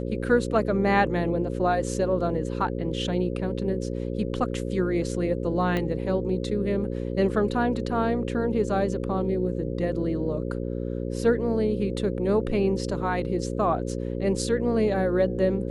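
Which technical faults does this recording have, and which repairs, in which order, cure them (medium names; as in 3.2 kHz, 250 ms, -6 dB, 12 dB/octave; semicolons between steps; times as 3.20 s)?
buzz 60 Hz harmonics 9 -30 dBFS
5.77 s: pop -15 dBFS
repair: de-click; de-hum 60 Hz, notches 9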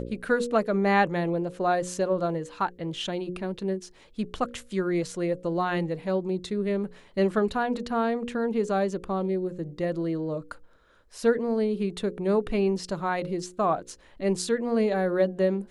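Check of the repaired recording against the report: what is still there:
5.77 s: pop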